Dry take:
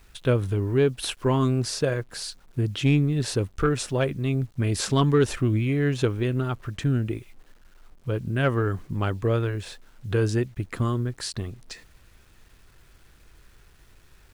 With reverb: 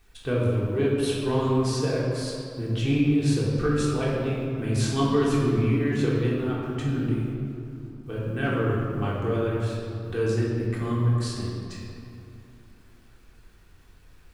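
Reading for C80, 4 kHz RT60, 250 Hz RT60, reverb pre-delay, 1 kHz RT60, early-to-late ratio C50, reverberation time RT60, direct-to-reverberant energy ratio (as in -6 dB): 1.0 dB, 1.4 s, 3.4 s, 3 ms, 2.5 s, -1.0 dB, 2.7 s, -6.5 dB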